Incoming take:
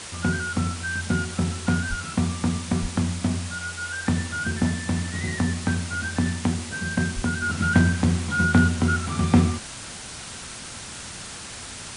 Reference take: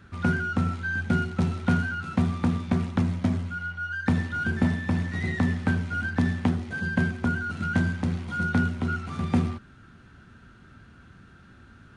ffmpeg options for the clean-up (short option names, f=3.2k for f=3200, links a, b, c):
-filter_complex "[0:a]asplit=3[a][b][c];[a]afade=t=out:st=1.89:d=0.02[d];[b]highpass=f=140:w=0.5412,highpass=f=140:w=1.3066,afade=t=in:st=1.89:d=0.02,afade=t=out:st=2.01:d=0.02[e];[c]afade=t=in:st=2.01:d=0.02[f];[d][e][f]amix=inputs=3:normalize=0,asplit=3[g][h][i];[g]afade=t=out:st=2.81:d=0.02[j];[h]highpass=f=140:w=0.5412,highpass=f=140:w=1.3066,afade=t=in:st=2.81:d=0.02,afade=t=out:st=2.93:d=0.02[k];[i]afade=t=in:st=2.93:d=0.02[l];[j][k][l]amix=inputs=3:normalize=0,asplit=3[m][n][o];[m]afade=t=out:st=7.15:d=0.02[p];[n]highpass=f=140:w=0.5412,highpass=f=140:w=1.3066,afade=t=in:st=7.15:d=0.02,afade=t=out:st=7.27:d=0.02[q];[o]afade=t=in:st=7.27:d=0.02[r];[p][q][r]amix=inputs=3:normalize=0,afwtdn=0.018,asetnsamples=n=441:p=0,asendcmd='7.42 volume volume -6dB',volume=0dB"